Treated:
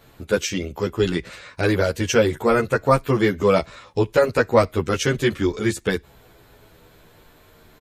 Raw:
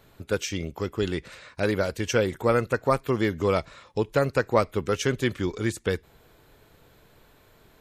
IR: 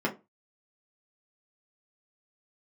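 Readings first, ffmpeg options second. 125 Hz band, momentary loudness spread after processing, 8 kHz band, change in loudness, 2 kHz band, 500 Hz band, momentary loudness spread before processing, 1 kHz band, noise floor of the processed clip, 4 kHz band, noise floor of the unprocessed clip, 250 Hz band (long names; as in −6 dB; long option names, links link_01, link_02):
+4.5 dB, 8 LU, +5.5 dB, +5.5 dB, +5.5 dB, +5.5 dB, 8 LU, +5.0 dB, −53 dBFS, +5.5 dB, −58 dBFS, +5.5 dB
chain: -filter_complex "[0:a]asplit=2[link_01][link_02];[link_02]adelay=11.1,afreqshift=-0.37[link_03];[link_01][link_03]amix=inputs=2:normalize=1,volume=8.5dB"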